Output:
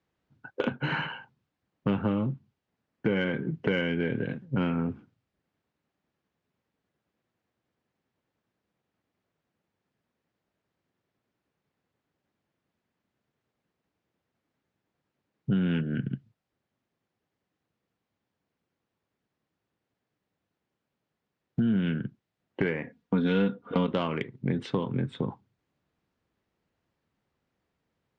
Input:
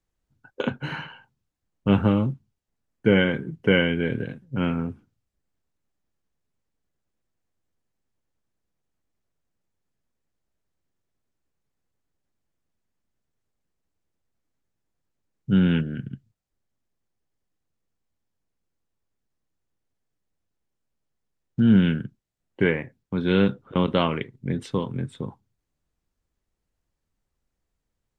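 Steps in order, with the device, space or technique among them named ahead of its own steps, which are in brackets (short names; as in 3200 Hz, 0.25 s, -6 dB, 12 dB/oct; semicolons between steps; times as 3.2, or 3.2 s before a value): AM radio (BPF 120–3500 Hz; compressor 5:1, threshold -31 dBFS, peak gain reduction 15.5 dB; soft clip -20.5 dBFS, distortion -24 dB); 22.82–23.88 comb 4.2 ms, depth 68%; gain +6.5 dB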